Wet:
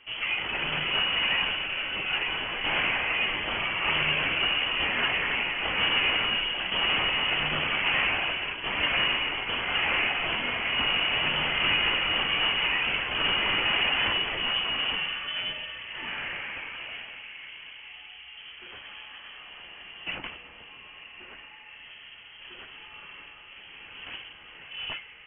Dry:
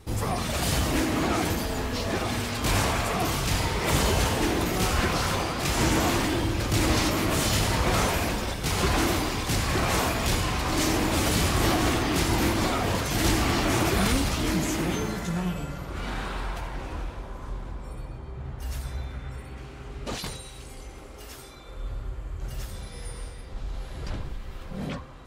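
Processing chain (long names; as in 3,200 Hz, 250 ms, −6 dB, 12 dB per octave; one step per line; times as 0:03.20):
high-pass filter 250 Hz 12 dB per octave
voice inversion scrambler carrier 3,200 Hz
level +1 dB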